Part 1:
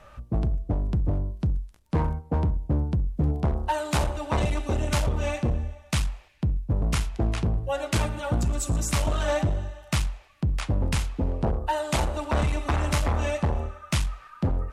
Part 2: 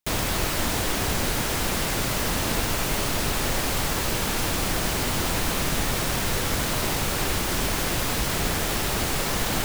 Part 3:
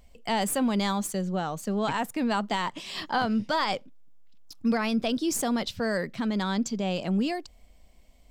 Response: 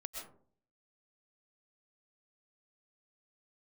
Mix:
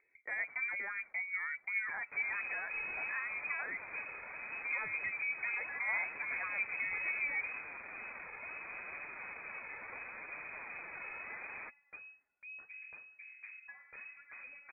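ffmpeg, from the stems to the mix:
-filter_complex "[0:a]adelay=2000,volume=-14.5dB[link_01];[1:a]asoftclip=type=hard:threshold=-26.5dB,adelay=2050,volume=-11dB[link_02];[2:a]lowshelf=frequency=220:width_type=q:width=3:gain=-12,volume=-4.5dB,asplit=2[link_03][link_04];[link_04]apad=whole_len=737415[link_05];[link_01][link_05]sidechaingate=range=-8dB:threshold=-59dB:ratio=16:detection=peak[link_06];[link_02][link_03]amix=inputs=2:normalize=0,highpass=77,alimiter=level_in=1.5dB:limit=-24dB:level=0:latency=1:release=71,volume=-1.5dB,volume=0dB[link_07];[link_06][link_07]amix=inputs=2:normalize=0,flanger=delay=2.3:depth=4.7:regen=36:speed=0.72:shape=sinusoidal,lowpass=frequency=2200:width_type=q:width=0.5098,lowpass=frequency=2200:width_type=q:width=0.6013,lowpass=frequency=2200:width_type=q:width=0.9,lowpass=frequency=2200:width_type=q:width=2.563,afreqshift=-2600"

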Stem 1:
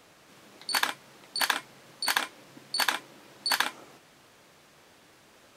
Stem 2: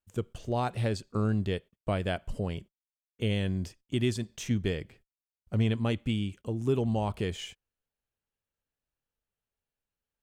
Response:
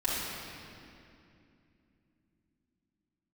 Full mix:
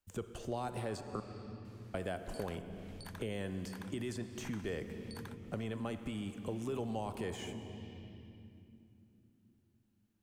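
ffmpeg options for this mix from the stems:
-filter_complex "[0:a]acompressor=threshold=-41dB:ratio=2.5,adelay=1650,volume=-11dB[link_01];[1:a]alimiter=level_in=1.5dB:limit=-24dB:level=0:latency=1:release=18,volume=-1.5dB,volume=2.5dB,asplit=3[link_02][link_03][link_04];[link_02]atrim=end=1.2,asetpts=PTS-STARTPTS,afade=type=out:start_time=1.196:duration=0.004:curve=hsin[link_05];[link_03]atrim=start=1.2:end=1.94,asetpts=PTS-STARTPTS,volume=0[link_06];[link_04]atrim=start=1.94,asetpts=PTS-STARTPTS,afade=type=in:duration=0.004:curve=hsin[link_07];[link_05][link_06][link_07]concat=n=3:v=0:a=1,asplit=2[link_08][link_09];[link_09]volume=-17.5dB[link_10];[2:a]atrim=start_sample=2205[link_11];[link_10][link_11]afir=irnorm=-1:irlink=0[link_12];[link_01][link_08][link_12]amix=inputs=3:normalize=0,acrossover=split=200|570|1800|6200[link_13][link_14][link_15][link_16][link_17];[link_13]acompressor=threshold=-48dB:ratio=4[link_18];[link_14]acompressor=threshold=-42dB:ratio=4[link_19];[link_15]acompressor=threshold=-41dB:ratio=4[link_20];[link_16]acompressor=threshold=-59dB:ratio=4[link_21];[link_17]acompressor=threshold=-55dB:ratio=4[link_22];[link_18][link_19][link_20][link_21][link_22]amix=inputs=5:normalize=0"

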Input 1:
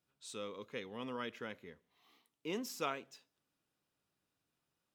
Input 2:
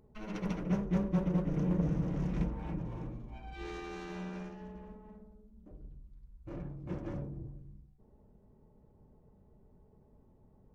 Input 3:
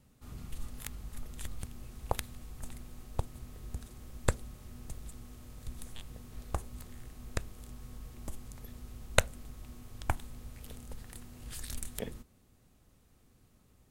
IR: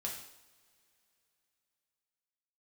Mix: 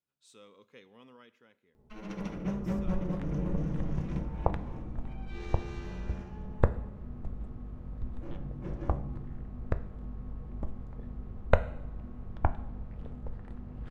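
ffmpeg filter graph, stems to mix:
-filter_complex "[0:a]volume=-11.5dB,afade=type=out:start_time=0.92:duration=0.46:silence=0.421697,asplit=2[link_01][link_02];[link_02]volume=-14dB[link_03];[1:a]adelay=1750,volume=-5dB,asplit=2[link_04][link_05];[link_05]volume=-3.5dB[link_06];[2:a]lowpass=1100,aeval=exprs='val(0)+0.00355*(sin(2*PI*50*n/s)+sin(2*PI*2*50*n/s)/2+sin(2*PI*3*50*n/s)/3+sin(2*PI*4*50*n/s)/4+sin(2*PI*5*50*n/s)/5)':channel_layout=same,adelay=2350,volume=2.5dB,asplit=2[link_07][link_08];[link_08]volume=-7dB[link_09];[3:a]atrim=start_sample=2205[link_10];[link_03][link_06][link_09]amix=inputs=3:normalize=0[link_11];[link_11][link_10]afir=irnorm=-1:irlink=0[link_12];[link_01][link_04][link_07][link_12]amix=inputs=4:normalize=0"

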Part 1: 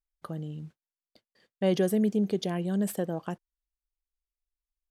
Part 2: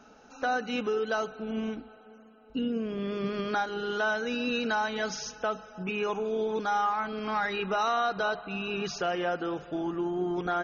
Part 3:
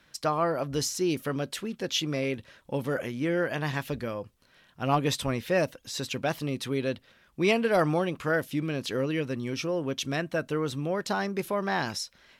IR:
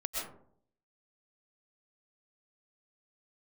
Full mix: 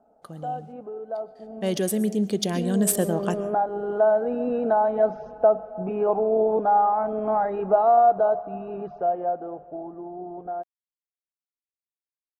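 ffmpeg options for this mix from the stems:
-filter_complex "[0:a]aemphasis=mode=production:type=50kf,adynamicsmooth=sensitivity=7:basefreq=6300,equalizer=frequency=9300:width_type=o:width=1.5:gain=6.5,volume=-5dB,asplit=2[link_01][link_02];[link_02]volume=-16dB[link_03];[1:a]lowpass=frequency=690:width_type=q:width=4.9,volume=-11.5dB[link_04];[3:a]atrim=start_sample=2205[link_05];[link_03][link_05]afir=irnorm=-1:irlink=0[link_06];[link_01][link_04][link_06]amix=inputs=3:normalize=0,dynaudnorm=framelen=540:gausssize=11:maxgain=16dB"

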